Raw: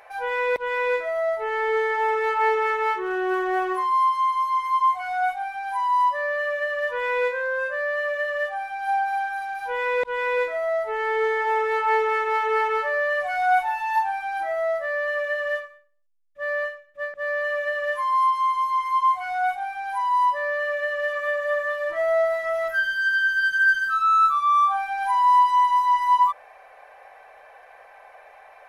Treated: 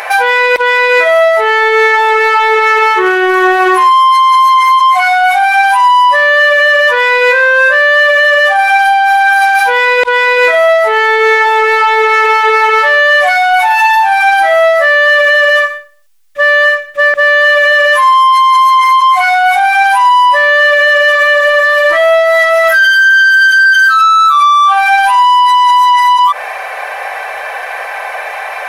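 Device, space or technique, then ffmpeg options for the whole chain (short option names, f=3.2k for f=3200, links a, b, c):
mastering chain: -af "equalizer=f=370:t=o:w=0.88:g=3.5,acompressor=threshold=-22dB:ratio=2.5,asoftclip=type=tanh:threshold=-19dB,tiltshelf=f=770:g=-7.5,alimiter=level_in=26.5dB:limit=-1dB:release=50:level=0:latency=1,volume=-1dB"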